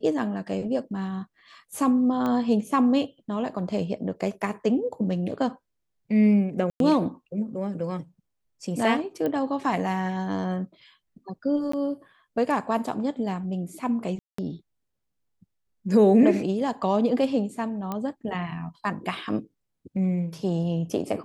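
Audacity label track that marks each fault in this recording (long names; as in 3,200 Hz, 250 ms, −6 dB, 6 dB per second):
2.260000	2.260000	click −17 dBFS
6.700000	6.800000	drop-out 102 ms
9.260000	9.260000	click −17 dBFS
11.720000	11.730000	drop-out 14 ms
14.190000	14.380000	drop-out 194 ms
17.920000	17.920000	click −17 dBFS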